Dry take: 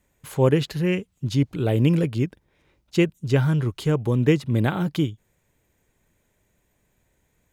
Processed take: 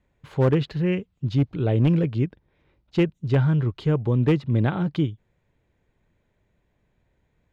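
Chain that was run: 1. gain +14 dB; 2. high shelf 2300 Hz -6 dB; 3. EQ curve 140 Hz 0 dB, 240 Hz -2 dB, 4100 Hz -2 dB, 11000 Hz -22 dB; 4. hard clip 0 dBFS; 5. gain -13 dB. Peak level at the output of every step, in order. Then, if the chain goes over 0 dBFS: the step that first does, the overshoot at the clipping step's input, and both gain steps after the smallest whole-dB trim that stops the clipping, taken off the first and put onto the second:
+7.0, +6.5, +5.0, 0.0, -13.0 dBFS; step 1, 5.0 dB; step 1 +9 dB, step 5 -8 dB

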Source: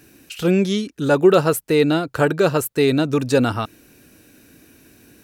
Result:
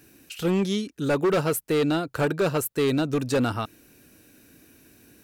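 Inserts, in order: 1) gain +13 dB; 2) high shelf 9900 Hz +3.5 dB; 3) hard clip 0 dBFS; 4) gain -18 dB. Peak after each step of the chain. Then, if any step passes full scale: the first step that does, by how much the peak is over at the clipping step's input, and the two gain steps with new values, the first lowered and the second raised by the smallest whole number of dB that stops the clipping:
+9.5, +9.5, 0.0, -18.0 dBFS; step 1, 9.5 dB; step 1 +3 dB, step 4 -8 dB

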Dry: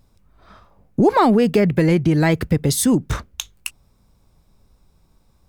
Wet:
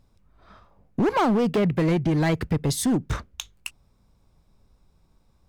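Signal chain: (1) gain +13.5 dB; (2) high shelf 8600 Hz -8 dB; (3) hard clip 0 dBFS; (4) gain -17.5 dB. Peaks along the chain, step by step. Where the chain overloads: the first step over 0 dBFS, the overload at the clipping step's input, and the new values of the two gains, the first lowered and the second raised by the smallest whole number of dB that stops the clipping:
+7.5, +7.5, 0.0, -17.5 dBFS; step 1, 7.5 dB; step 1 +5.5 dB, step 4 -9.5 dB

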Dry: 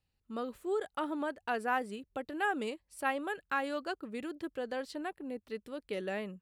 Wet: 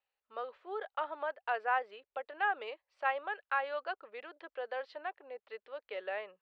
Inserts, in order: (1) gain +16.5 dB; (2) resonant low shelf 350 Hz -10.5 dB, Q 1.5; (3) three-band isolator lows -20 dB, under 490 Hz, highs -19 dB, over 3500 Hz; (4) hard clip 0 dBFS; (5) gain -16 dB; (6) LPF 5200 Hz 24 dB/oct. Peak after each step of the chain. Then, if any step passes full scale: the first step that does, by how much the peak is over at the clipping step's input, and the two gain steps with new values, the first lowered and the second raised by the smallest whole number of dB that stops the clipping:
-2.0, -0.5, -2.5, -2.5, -18.5, -18.5 dBFS; no overload

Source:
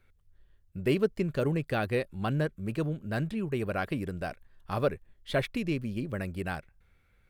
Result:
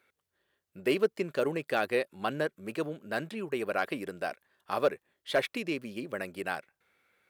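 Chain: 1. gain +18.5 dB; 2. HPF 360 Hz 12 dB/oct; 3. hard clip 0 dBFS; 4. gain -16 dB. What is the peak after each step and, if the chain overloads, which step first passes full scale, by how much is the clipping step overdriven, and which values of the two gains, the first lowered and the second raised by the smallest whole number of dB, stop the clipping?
+4.5, +4.0, 0.0, -16.0 dBFS; step 1, 4.0 dB; step 1 +14.5 dB, step 4 -12 dB

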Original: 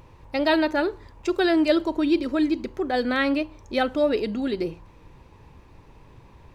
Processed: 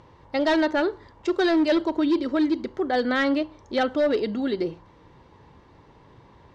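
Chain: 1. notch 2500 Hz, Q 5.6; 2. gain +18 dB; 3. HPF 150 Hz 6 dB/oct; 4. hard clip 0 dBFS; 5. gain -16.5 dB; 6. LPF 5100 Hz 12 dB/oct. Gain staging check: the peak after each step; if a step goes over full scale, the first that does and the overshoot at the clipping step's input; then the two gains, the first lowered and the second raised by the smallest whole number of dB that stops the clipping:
-9.0, +9.0, +8.5, 0.0, -16.5, -16.0 dBFS; step 2, 8.5 dB; step 2 +9 dB, step 5 -7.5 dB

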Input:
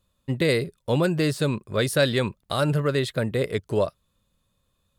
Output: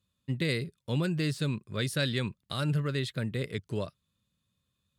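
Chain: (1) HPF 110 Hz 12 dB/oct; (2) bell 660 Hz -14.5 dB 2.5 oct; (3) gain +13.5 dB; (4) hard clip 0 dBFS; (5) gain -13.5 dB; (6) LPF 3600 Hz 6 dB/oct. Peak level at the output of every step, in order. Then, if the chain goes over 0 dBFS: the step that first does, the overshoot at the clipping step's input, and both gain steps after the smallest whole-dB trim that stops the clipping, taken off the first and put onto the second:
-6.5, -15.0, -1.5, -1.5, -15.0, -16.5 dBFS; no overload

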